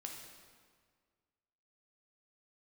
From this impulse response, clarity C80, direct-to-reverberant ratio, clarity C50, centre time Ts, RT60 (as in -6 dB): 5.0 dB, 0.5 dB, 3.0 dB, 56 ms, 1.8 s